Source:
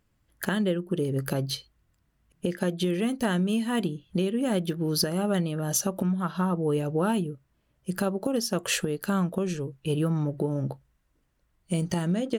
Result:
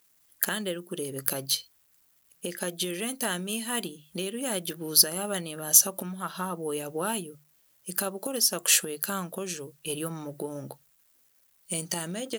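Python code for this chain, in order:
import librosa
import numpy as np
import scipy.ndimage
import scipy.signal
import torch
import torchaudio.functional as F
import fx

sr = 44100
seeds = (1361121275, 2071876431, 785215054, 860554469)

y = fx.quant_dither(x, sr, seeds[0], bits=12, dither='none')
y = fx.riaa(y, sr, side='recording')
y = fx.hum_notches(y, sr, base_hz=50, count=3)
y = y * librosa.db_to_amplitude(-2.0)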